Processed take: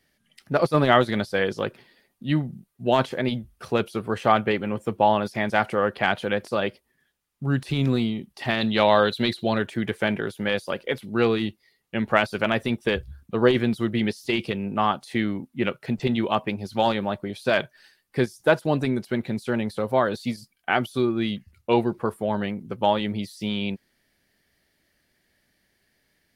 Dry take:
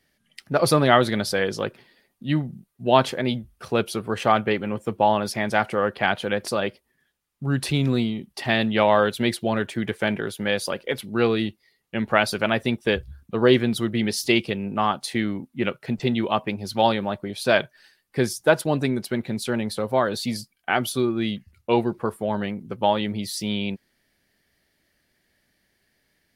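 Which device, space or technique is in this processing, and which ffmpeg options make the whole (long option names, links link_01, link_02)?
de-esser from a sidechain: -filter_complex "[0:a]asplit=2[link_01][link_02];[link_02]highpass=frequency=5900:width=0.5412,highpass=frequency=5900:width=1.3066,apad=whole_len=1162471[link_03];[link_01][link_03]sidechaincompress=threshold=-46dB:ratio=6:attack=0.6:release=27,asettb=1/sr,asplit=3[link_04][link_05][link_06];[link_04]atrim=end=8.614[link_07];[link_05]atrim=start=8.61:end=9.58,asetpts=PTS-STARTPTS,afade=type=in:duration=0.004:curve=qsin,afade=type=out:start_time=0.966:duration=0.004:curve=qsin,equalizer=frequency=4000:width=4.8:gain=15[link_08];[link_06]atrim=start=9.576[link_09];[link_07][link_08]acrossfade=duration=0.004:curve1=hsin:curve2=qsin[link_10];[link_10][link_09]acrossfade=duration=0.004:curve1=qsin:curve2=hsin"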